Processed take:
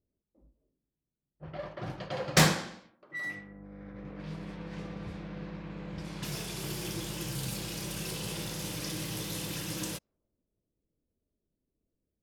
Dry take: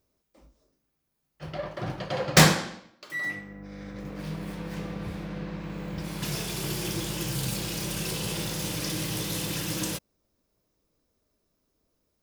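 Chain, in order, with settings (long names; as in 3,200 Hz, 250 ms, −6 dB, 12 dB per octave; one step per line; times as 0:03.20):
low-pass that shuts in the quiet parts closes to 380 Hz, open at −28.5 dBFS
level −5.5 dB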